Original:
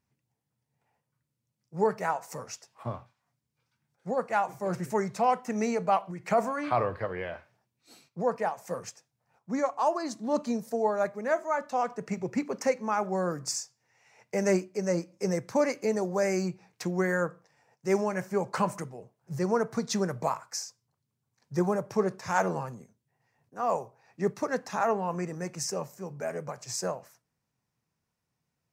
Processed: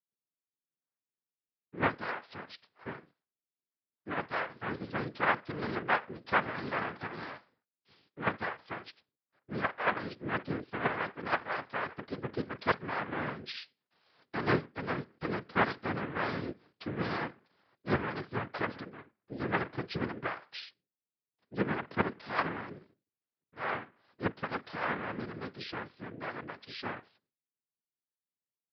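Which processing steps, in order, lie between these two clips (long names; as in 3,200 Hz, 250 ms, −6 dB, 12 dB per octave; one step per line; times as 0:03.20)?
noise gate with hold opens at −60 dBFS
in parallel at −2 dB: output level in coarse steps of 23 dB
on the sum: cochlear-implant simulation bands 3
downsampling to 11,025 Hz
level −7.5 dB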